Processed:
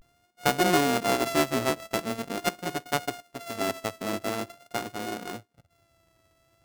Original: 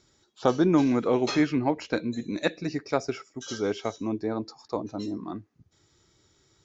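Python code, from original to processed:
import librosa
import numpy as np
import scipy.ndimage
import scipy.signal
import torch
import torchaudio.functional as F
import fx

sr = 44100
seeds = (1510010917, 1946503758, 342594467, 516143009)

y = np.r_[np.sort(x[:len(x) // 64 * 64].reshape(-1, 64), axis=1).ravel(), x[len(x) // 64 * 64:]]
y = fx.vibrato(y, sr, rate_hz=0.44, depth_cents=75.0)
y = y * 10.0 ** (-1.5 / 20.0)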